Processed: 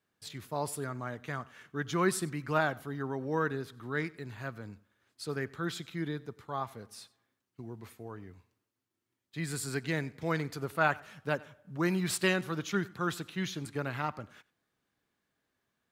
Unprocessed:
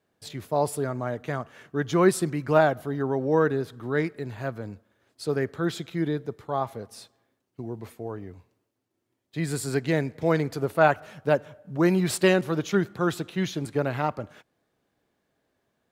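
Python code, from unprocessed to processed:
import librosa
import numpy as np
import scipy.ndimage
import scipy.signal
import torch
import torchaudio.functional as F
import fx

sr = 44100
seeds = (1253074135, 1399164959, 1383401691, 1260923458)

p1 = fx.curve_eq(x, sr, hz=(210.0, 630.0, 1200.0), db=(0, -5, 4))
p2 = p1 + fx.echo_single(p1, sr, ms=93, db=-22.5, dry=0)
y = F.gain(torch.from_numpy(p2), -7.5).numpy()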